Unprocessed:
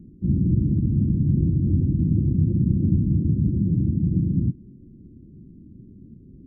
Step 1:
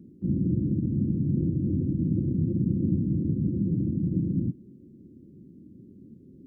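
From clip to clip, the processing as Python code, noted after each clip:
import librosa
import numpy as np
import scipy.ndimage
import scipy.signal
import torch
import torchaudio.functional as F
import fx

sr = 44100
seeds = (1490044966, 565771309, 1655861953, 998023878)

y = fx.highpass(x, sr, hz=450.0, slope=6)
y = F.gain(torch.from_numpy(y), 4.5).numpy()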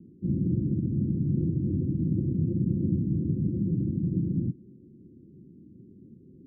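y = scipy.signal.sosfilt(scipy.signal.cheby1(6, 3, 530.0, 'lowpass', fs=sr, output='sos'), x)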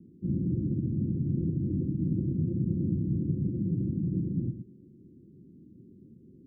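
y = x + 10.0 ** (-10.0 / 20.0) * np.pad(x, (int(114 * sr / 1000.0), 0))[:len(x)]
y = F.gain(torch.from_numpy(y), -2.5).numpy()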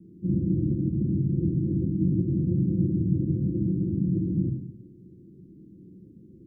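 y = fx.room_shoebox(x, sr, seeds[0], volume_m3=34.0, walls='mixed', distance_m=0.53)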